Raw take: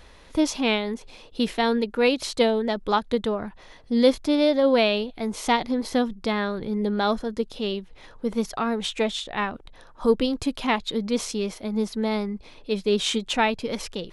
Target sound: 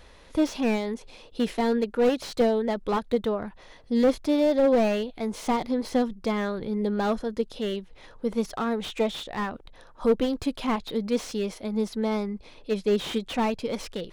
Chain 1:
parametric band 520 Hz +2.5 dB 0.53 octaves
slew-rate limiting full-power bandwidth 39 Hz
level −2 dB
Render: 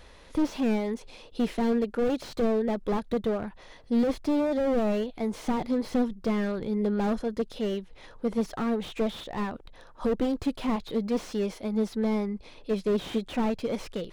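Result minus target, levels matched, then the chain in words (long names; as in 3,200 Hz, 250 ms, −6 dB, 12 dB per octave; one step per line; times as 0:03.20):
slew-rate limiting: distortion +7 dB
parametric band 520 Hz +2.5 dB 0.53 octaves
slew-rate limiting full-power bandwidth 90 Hz
level −2 dB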